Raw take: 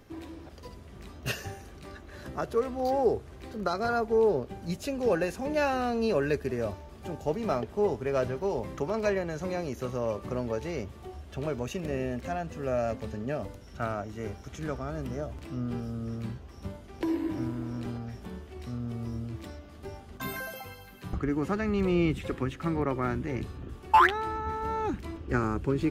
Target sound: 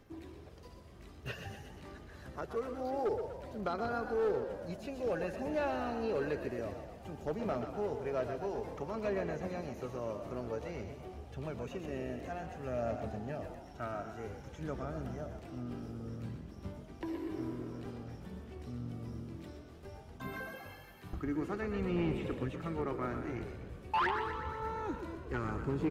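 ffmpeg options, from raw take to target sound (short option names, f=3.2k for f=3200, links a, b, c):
-filter_complex "[0:a]asplit=2[a][b];[b]aecho=0:1:139:0.188[c];[a][c]amix=inputs=2:normalize=0,aphaser=in_gain=1:out_gain=1:delay=3.2:decay=0.3:speed=0.54:type=sinusoidal,asoftclip=type=hard:threshold=-19.5dB,acrossover=split=3400[d][e];[e]acompressor=threshold=-52dB:ratio=4:attack=1:release=60[f];[d][f]amix=inputs=2:normalize=0,asplit=2[g][h];[h]asplit=7[i][j][k][l][m][n][o];[i]adelay=122,afreqshift=44,volume=-9dB[p];[j]adelay=244,afreqshift=88,volume=-13.4dB[q];[k]adelay=366,afreqshift=132,volume=-17.9dB[r];[l]adelay=488,afreqshift=176,volume=-22.3dB[s];[m]adelay=610,afreqshift=220,volume=-26.7dB[t];[n]adelay=732,afreqshift=264,volume=-31.2dB[u];[o]adelay=854,afreqshift=308,volume=-35.6dB[v];[p][q][r][s][t][u][v]amix=inputs=7:normalize=0[w];[g][w]amix=inputs=2:normalize=0,volume=-8.5dB"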